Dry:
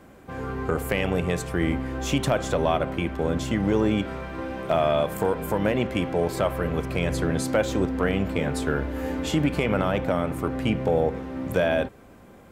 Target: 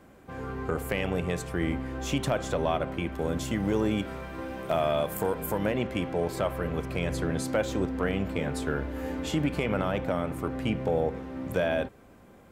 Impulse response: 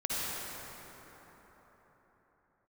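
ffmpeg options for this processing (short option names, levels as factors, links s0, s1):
-filter_complex "[0:a]asettb=1/sr,asplit=3[s0][s1][s2];[s0]atrim=end=3.124[s3];[s1]atrim=start=3.12:end=5.66,asetpts=PTS-STARTPTS,afade=t=in:d=0.004:c=qsin,afade=t=out:st=2.536:d=0.004:c=qsin,highshelf=f=9000:g=11.5[s4];[s2]atrim=start=5.656[s5];[s3][s4]acrossfade=d=0.004:c1=hsin:c2=qsin[s6];[s6][s5]acrossfade=d=0.004:c1=qsin:c2=hsin,volume=0.596"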